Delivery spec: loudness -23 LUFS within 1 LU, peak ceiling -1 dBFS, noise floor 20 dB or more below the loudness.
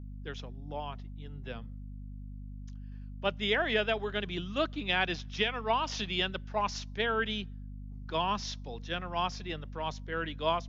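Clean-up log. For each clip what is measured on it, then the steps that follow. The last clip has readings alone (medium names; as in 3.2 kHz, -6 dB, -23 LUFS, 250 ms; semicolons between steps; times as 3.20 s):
hum 50 Hz; highest harmonic 250 Hz; hum level -41 dBFS; loudness -33.0 LUFS; peak level -15.0 dBFS; loudness target -23.0 LUFS
-> hum notches 50/100/150/200/250 Hz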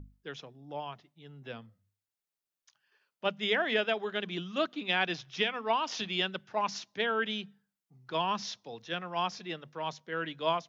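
hum not found; loudness -33.0 LUFS; peak level -15.5 dBFS; loudness target -23.0 LUFS
-> trim +10 dB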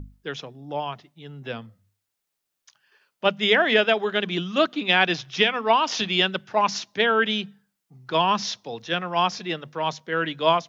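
loudness -23.0 LUFS; peak level -5.5 dBFS; noise floor -81 dBFS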